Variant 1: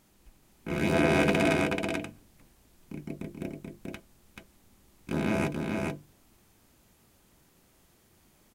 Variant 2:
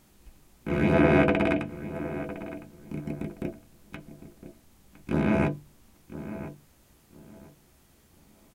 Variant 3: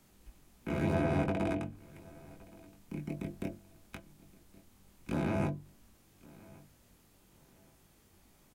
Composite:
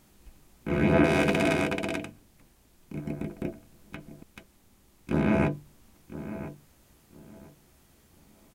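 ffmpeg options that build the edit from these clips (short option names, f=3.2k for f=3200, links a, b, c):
-filter_complex "[0:a]asplit=2[a][b];[1:a]asplit=3[c][d][e];[c]atrim=end=1.042[f];[a]atrim=start=1.038:end=2.952[g];[d]atrim=start=2.948:end=4.232[h];[b]atrim=start=4.228:end=5.102[i];[e]atrim=start=5.098[j];[f][g]acrossfade=d=0.004:c1=hsin:c2=hsin[k];[k][h]acrossfade=d=0.004:c1=hsin:c2=hsin[l];[l][i]acrossfade=d=0.004:c1=hsin:c2=hsin[m];[m][j]acrossfade=d=0.004:c1=hsin:c2=hsin"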